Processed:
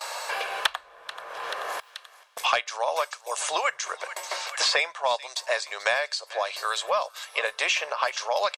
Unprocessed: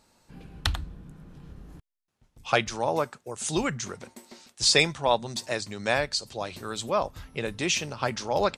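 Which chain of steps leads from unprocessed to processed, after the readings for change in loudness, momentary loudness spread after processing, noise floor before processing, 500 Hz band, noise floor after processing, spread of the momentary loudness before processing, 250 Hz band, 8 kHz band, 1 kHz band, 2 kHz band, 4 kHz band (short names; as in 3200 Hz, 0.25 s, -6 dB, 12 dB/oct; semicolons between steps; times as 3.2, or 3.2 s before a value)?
0.0 dB, 12 LU, -73 dBFS, -1.0 dB, -54 dBFS, 14 LU, -22.0 dB, -1.0 dB, +3.0 dB, +4.0 dB, +1.0 dB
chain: inverse Chebyshev high-pass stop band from 250 Hz, stop band 50 dB; gate with hold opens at -57 dBFS; high shelf 4600 Hz -7 dB; comb 1.8 ms, depth 35%; soft clip -11 dBFS, distortion -25 dB; on a send: thinning echo 0.434 s, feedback 36%, high-pass 1200 Hz, level -21.5 dB; on the sum: three-band squash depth 100%; gain +4.5 dB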